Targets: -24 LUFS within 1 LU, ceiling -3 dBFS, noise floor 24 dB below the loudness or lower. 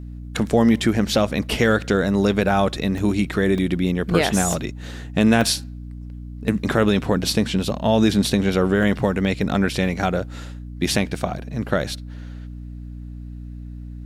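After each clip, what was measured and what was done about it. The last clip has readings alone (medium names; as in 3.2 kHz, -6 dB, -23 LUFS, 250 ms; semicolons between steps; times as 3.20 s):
dropouts 5; longest dropout 1.8 ms; hum 60 Hz; highest harmonic 300 Hz; hum level -32 dBFS; loudness -20.5 LUFS; peak level -4.5 dBFS; loudness target -24.0 LUFS
-> interpolate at 2.98/3.58/4.53/5.41/8.83 s, 1.8 ms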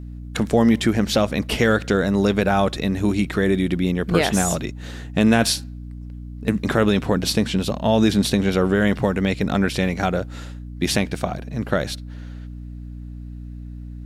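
dropouts 0; hum 60 Hz; highest harmonic 300 Hz; hum level -32 dBFS
-> de-hum 60 Hz, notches 5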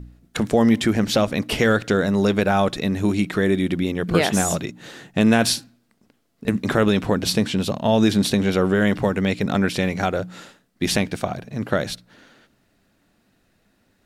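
hum not found; loudness -21.0 LUFS; peak level -5.5 dBFS; loudness target -24.0 LUFS
-> trim -3 dB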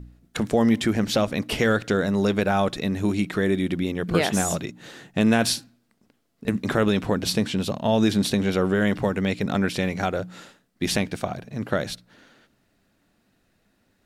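loudness -24.0 LUFS; peak level -8.5 dBFS; noise floor -68 dBFS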